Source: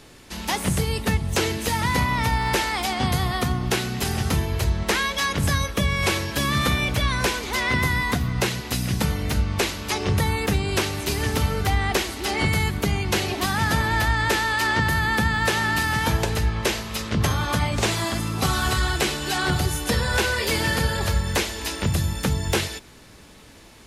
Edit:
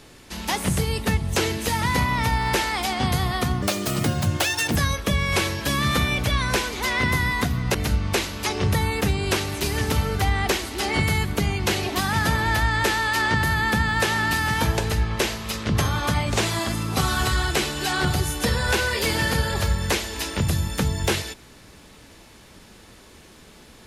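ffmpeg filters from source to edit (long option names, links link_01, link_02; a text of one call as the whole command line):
ffmpeg -i in.wav -filter_complex "[0:a]asplit=4[link_01][link_02][link_03][link_04];[link_01]atrim=end=3.624[link_05];[link_02]atrim=start=3.62:end=5.46,asetpts=PTS-STARTPTS,asetrate=71442,aresample=44100[link_06];[link_03]atrim=start=5.456:end=8.452[link_07];[link_04]atrim=start=9.198[link_08];[link_05][link_06]acrossfade=duration=0.004:curve1=hsin:curve2=hsin[link_09];[link_09][link_07]acrossfade=duration=0.004:curve1=hsin:curve2=hsin[link_10];[link_10][link_08]acrossfade=duration=0.004:curve1=hsin:curve2=hsin" out.wav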